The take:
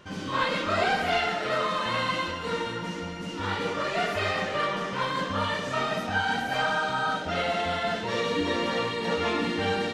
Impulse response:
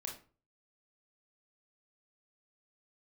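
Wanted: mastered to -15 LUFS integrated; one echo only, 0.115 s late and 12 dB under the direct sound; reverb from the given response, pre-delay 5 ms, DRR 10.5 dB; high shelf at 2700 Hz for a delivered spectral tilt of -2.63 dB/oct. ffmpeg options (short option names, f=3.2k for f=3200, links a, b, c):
-filter_complex "[0:a]highshelf=f=2.7k:g=-4,aecho=1:1:115:0.251,asplit=2[a][b];[1:a]atrim=start_sample=2205,adelay=5[c];[b][c]afir=irnorm=-1:irlink=0,volume=-9dB[d];[a][d]amix=inputs=2:normalize=0,volume=12.5dB"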